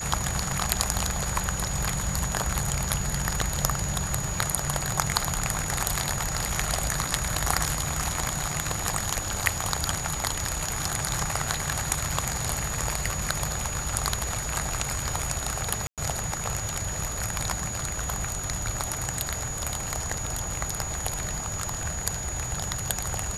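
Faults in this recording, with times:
whine 6.8 kHz -33 dBFS
15.87–15.98 s: dropout 107 ms

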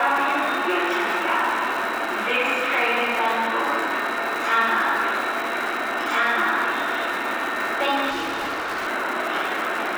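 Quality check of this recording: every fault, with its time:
crackle 370 per s -27 dBFS
8.09–8.88 s: clipped -23.5 dBFS

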